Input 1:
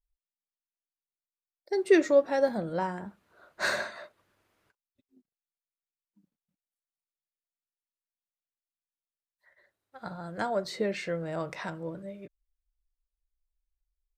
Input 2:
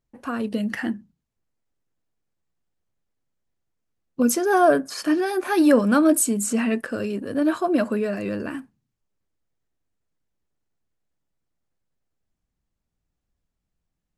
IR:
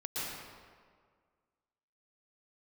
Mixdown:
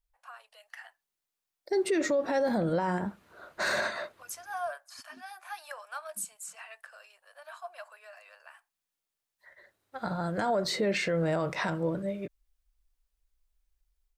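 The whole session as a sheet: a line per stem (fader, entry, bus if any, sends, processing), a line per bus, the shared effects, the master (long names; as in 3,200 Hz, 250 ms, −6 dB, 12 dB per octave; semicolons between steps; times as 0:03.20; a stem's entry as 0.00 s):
+2.5 dB, 0.00 s, no send, automatic gain control gain up to 5.5 dB
−15.0 dB, 0.00 s, no send, Butterworth high-pass 670 Hz 48 dB per octave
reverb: not used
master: brickwall limiter −20.5 dBFS, peak gain reduction 17 dB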